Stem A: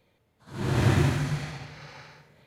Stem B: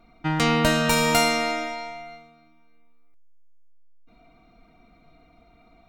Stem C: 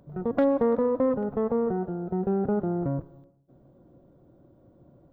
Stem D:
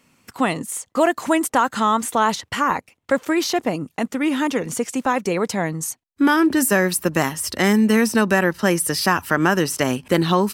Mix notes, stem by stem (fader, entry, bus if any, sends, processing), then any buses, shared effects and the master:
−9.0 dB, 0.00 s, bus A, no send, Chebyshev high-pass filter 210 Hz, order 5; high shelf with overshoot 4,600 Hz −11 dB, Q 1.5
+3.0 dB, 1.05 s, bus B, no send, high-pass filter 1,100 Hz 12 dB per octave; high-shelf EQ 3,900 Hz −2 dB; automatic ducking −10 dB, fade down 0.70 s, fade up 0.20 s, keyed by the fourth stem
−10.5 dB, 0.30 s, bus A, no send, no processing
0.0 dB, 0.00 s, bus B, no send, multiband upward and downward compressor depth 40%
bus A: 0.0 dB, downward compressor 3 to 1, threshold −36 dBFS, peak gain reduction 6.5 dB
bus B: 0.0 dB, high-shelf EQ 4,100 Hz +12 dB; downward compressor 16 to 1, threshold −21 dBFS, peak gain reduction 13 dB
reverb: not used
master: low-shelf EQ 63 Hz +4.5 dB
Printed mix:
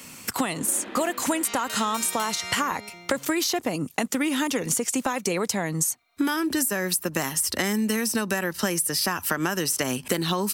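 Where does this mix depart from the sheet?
stem C −10.5 dB → −22.5 dB
master: missing low-shelf EQ 63 Hz +4.5 dB

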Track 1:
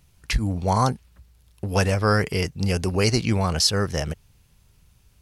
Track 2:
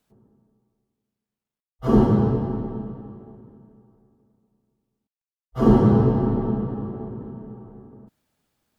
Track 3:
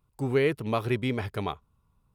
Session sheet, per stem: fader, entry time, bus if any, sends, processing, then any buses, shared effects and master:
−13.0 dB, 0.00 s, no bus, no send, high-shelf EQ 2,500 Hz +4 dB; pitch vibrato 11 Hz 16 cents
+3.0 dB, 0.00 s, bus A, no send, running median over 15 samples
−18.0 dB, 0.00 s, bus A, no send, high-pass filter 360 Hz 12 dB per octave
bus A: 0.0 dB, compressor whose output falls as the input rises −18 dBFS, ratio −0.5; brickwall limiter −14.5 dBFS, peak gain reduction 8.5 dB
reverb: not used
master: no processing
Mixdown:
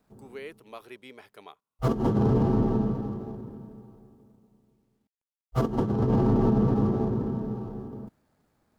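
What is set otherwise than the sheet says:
stem 1: muted
master: extra high-shelf EQ 5,100 Hz +6 dB

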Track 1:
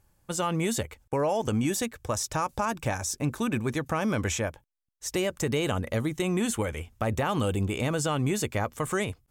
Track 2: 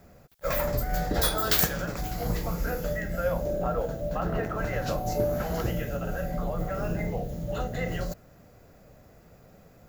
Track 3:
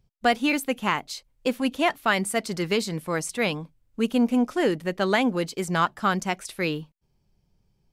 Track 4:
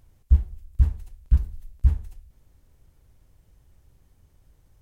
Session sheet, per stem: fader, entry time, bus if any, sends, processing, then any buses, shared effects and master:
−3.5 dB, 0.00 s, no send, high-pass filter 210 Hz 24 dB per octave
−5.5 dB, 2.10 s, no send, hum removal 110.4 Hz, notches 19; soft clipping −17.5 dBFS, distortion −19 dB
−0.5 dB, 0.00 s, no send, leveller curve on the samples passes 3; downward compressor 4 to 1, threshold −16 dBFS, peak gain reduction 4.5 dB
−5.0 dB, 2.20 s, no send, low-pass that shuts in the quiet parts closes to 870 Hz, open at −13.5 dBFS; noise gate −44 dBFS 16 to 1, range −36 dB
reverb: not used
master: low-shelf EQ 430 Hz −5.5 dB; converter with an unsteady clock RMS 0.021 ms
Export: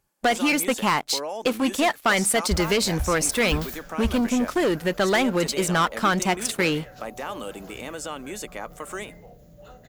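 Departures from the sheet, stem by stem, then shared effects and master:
stem 2 −5.5 dB → −12.0 dB
master: missing converter with an unsteady clock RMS 0.021 ms

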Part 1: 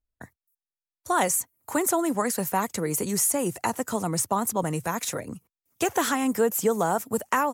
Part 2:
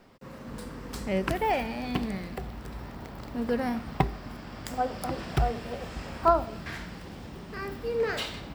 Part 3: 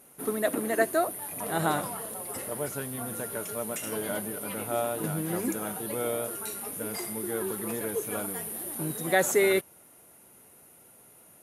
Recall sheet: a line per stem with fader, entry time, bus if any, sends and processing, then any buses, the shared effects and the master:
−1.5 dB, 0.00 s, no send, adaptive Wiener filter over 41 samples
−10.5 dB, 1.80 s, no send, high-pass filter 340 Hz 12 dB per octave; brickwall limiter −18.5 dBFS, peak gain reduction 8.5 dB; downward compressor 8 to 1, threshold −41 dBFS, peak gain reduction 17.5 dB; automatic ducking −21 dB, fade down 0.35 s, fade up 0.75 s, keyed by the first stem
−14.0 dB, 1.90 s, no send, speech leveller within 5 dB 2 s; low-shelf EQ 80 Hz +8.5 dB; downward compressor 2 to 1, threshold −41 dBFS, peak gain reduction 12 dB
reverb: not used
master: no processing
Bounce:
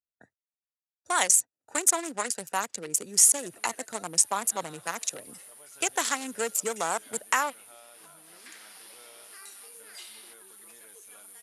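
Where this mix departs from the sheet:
stem 3: entry 1.90 s → 3.00 s
master: extra meter weighting curve ITU-R 468

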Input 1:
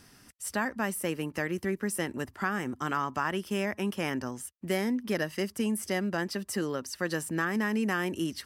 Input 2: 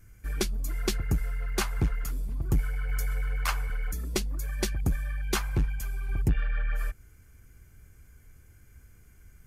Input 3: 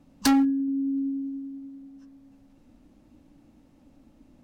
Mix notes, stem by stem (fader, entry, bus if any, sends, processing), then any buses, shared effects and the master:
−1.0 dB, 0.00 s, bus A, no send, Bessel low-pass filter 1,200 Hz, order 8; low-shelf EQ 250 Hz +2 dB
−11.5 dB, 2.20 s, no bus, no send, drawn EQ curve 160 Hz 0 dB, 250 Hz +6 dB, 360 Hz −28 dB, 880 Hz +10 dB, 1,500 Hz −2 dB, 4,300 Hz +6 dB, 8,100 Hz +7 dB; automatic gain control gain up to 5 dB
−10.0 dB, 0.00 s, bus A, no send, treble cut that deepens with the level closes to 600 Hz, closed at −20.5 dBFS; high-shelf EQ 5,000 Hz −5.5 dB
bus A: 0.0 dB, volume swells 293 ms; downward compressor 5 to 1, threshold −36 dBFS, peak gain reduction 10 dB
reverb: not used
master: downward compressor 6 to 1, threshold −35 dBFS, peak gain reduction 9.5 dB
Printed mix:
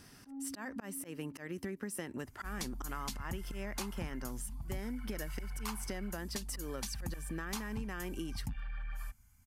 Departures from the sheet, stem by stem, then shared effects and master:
stem 1: missing Bessel low-pass filter 1,200 Hz, order 8
stem 2: missing automatic gain control gain up to 5 dB
stem 3 −10.0 dB → −16.5 dB

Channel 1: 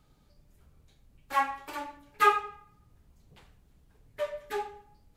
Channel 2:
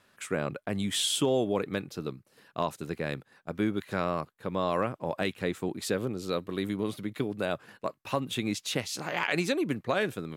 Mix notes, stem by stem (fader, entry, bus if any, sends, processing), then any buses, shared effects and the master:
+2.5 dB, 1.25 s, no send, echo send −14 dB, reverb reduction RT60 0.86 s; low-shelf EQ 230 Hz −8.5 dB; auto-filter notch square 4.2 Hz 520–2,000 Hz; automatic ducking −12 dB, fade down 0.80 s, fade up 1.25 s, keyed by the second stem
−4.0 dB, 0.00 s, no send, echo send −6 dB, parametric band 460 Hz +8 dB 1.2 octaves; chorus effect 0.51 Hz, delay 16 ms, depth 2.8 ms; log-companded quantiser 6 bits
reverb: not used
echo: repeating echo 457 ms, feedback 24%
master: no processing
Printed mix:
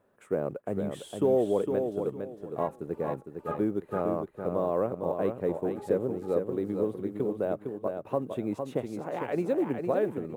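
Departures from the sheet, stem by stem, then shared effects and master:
stem 2: missing chorus effect 0.51 Hz, delay 16 ms, depth 2.8 ms
master: extra drawn EQ curve 800 Hz 0 dB, 4,800 Hz −22 dB, 9,100 Hz −14 dB

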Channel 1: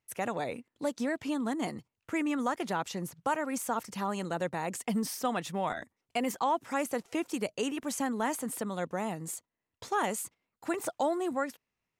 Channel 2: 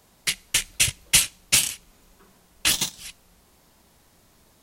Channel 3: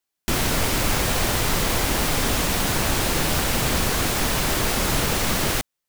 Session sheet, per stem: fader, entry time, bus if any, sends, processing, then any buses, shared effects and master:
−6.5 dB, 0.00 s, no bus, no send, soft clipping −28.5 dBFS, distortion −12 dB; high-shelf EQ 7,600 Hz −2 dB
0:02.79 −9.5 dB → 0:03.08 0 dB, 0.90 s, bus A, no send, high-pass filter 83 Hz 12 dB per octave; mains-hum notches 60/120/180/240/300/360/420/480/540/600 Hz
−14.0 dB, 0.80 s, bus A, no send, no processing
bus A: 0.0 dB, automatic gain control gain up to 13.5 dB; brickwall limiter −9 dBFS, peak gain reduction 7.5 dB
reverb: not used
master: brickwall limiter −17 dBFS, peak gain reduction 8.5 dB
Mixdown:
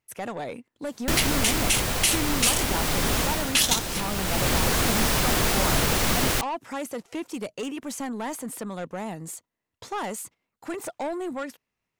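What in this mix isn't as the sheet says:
stem 1 −6.5 dB → +3.0 dB
master: missing brickwall limiter −17 dBFS, peak gain reduction 8.5 dB

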